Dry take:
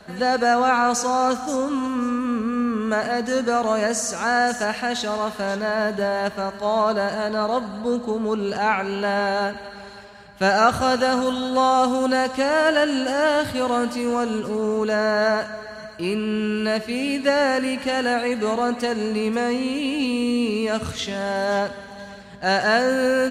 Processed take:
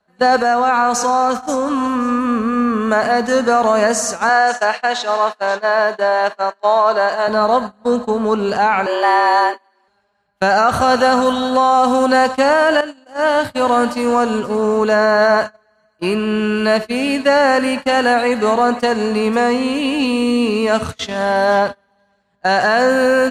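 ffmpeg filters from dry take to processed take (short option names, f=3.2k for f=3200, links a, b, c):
-filter_complex "[0:a]asettb=1/sr,asplit=3[a][b][c];[a]atrim=end=0.414[d];[b]atrim=start=0.41:end=2.09,asetpts=PTS-STARTPTS,afade=t=in:d=0.004:c=qsin,afade=t=out:st=1.676:d=0.004:c=qsin,acompressor=threshold=-20dB:ratio=5:attack=3.2:release=140:knee=1:detection=peak[e];[c]atrim=start=2.086[f];[d][e]acrossfade=d=0.004:c1=hsin:c2=qsin[g];[g][f]acrossfade=d=0.004:c1=qsin:c2=hsin,asettb=1/sr,asplit=3[h][i][j];[h]atrim=end=4.294[k];[i]atrim=start=4.29:end=7.28,asetpts=PTS-STARTPTS,afade=t=in:d=0.004:c=qsin,afade=t=out:st=2.986:d=0.004:c=qsin,highpass=420,lowpass=7.3k[l];[j]atrim=start=7.276[m];[k][l]acrossfade=d=0.004:c1=hsin:c2=qsin[n];[n][m]acrossfade=d=0.004:c1=qsin:c2=hsin,asettb=1/sr,asplit=3[o][p][q];[o]atrim=end=8.864[r];[p]atrim=start=8.86:end=9.88,asetpts=PTS-STARTPTS,afade=t=in:d=0.004:c=qsin,afade=t=out:st=1.016:d=0.004:c=qsin,afreqshift=170[s];[q]atrim=start=9.876[t];[r][s]acrossfade=d=0.004:c1=hsin:c2=qsin[u];[u][t]acrossfade=d=0.004:c1=qsin:c2=hsin,asettb=1/sr,asplit=3[v][w][x];[v]atrim=end=21.254[y];[w]atrim=start=21.25:end=22.13,asetpts=PTS-STARTPTS,afade=t=in:d=0.004:c=qsin,afade=t=out:st=0.876:d=0.004:c=qsin,equalizer=f=7k:t=o:w=0.31:g=-6.5[z];[x]atrim=start=22.126[aa];[y][z]acrossfade=d=0.004:c1=hsin:c2=qsin[ab];[ab][aa]acrossfade=d=0.004:c1=qsin:c2=hsin,asplit=2[ac][ad];[ac]atrim=end=12.81,asetpts=PTS-STARTPTS,afade=t=out:st=12.806:d=0.004:c=hsin:silence=0.211349[ae];[ad]atrim=start=12.81,asetpts=PTS-STARTPTS,afade=t=in:d=0.96:silence=0.211349[af];[ae][af]concat=n=2:v=0:a=1,agate=range=-30dB:threshold=-27dB:ratio=16:detection=peak,equalizer=f=950:t=o:w=1.6:g=6,alimiter=level_in=8.5dB:limit=-1dB:release=50:level=0:latency=1,volume=-3.5dB"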